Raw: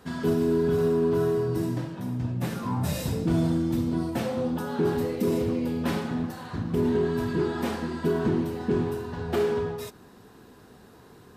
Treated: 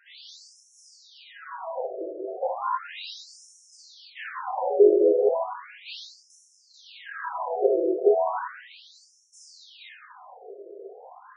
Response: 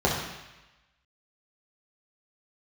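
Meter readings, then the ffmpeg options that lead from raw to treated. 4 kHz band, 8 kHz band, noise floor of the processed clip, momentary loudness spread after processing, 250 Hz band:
0.0 dB, no reading, -60 dBFS, 25 LU, -9.5 dB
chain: -filter_complex "[1:a]atrim=start_sample=2205[s0];[0:a][s0]afir=irnorm=-1:irlink=0,afftfilt=real='re*between(b*sr/1024,460*pow(7600/460,0.5+0.5*sin(2*PI*0.35*pts/sr))/1.41,460*pow(7600/460,0.5+0.5*sin(2*PI*0.35*pts/sr))*1.41)':imag='im*between(b*sr/1024,460*pow(7600/460,0.5+0.5*sin(2*PI*0.35*pts/sr))/1.41,460*pow(7600/460,0.5+0.5*sin(2*PI*0.35*pts/sr))*1.41)':win_size=1024:overlap=0.75,volume=0.531"

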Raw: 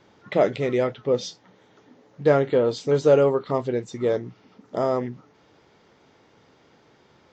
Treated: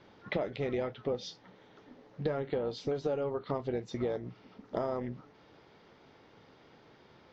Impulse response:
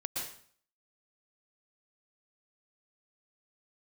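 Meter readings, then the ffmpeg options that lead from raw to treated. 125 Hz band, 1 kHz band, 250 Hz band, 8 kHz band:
-10.5 dB, -11.5 dB, -10.5 dB, no reading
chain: -af "lowpass=f=5300:w=0.5412,lowpass=f=5300:w=1.3066,acompressor=threshold=0.0398:ratio=10,tremolo=f=290:d=0.4"

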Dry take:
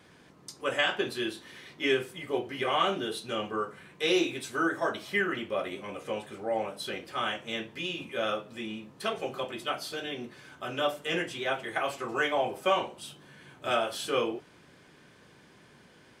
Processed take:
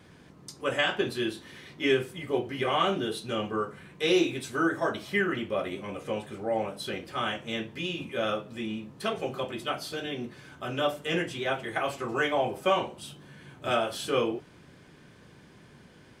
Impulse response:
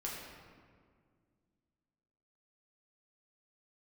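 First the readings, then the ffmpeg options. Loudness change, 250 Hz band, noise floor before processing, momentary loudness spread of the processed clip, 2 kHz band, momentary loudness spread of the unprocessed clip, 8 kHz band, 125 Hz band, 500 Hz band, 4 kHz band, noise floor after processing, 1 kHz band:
+1.5 dB, +3.5 dB, -57 dBFS, 11 LU, 0.0 dB, 12 LU, 0.0 dB, +6.5 dB, +2.0 dB, 0.0 dB, -54 dBFS, +0.5 dB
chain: -af "lowshelf=f=240:g=9"

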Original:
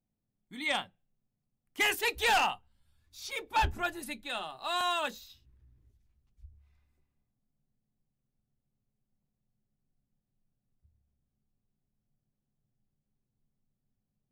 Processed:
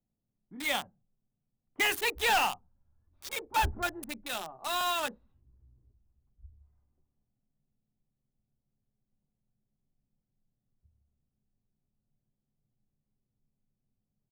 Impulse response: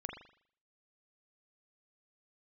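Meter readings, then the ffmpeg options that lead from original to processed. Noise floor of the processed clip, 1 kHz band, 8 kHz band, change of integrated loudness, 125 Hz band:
-85 dBFS, 0.0 dB, +3.0 dB, +0.5 dB, 0.0 dB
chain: -filter_complex "[0:a]acrossover=split=180|1200[s0][s1][s2];[s0]aecho=1:1:164:0.133[s3];[s2]acrusher=bits=5:mix=0:aa=0.000001[s4];[s3][s1][s4]amix=inputs=3:normalize=0"

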